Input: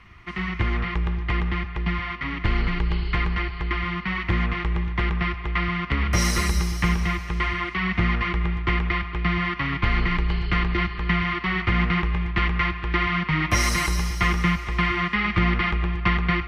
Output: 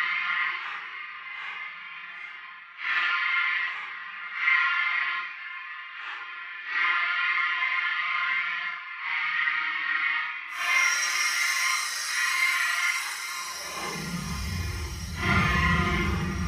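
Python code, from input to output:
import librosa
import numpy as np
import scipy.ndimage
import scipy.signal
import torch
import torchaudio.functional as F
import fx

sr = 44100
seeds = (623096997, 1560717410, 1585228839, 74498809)

y = fx.paulstretch(x, sr, seeds[0], factor=6.7, window_s=0.05, from_s=11.93)
y = fx.filter_sweep_highpass(y, sr, from_hz=1500.0, to_hz=98.0, start_s=13.27, end_s=14.41, q=1.4)
y = y * librosa.db_to_amplitude(-3.5)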